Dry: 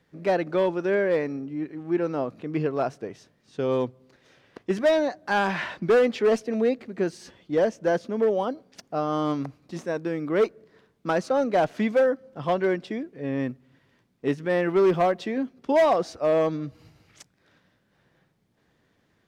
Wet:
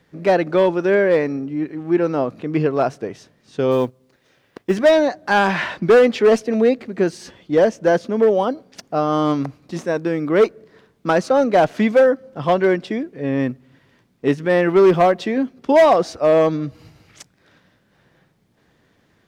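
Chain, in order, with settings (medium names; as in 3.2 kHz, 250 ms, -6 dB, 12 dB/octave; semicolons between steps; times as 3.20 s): 3.71–4.77 s: companding laws mixed up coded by A; trim +7.5 dB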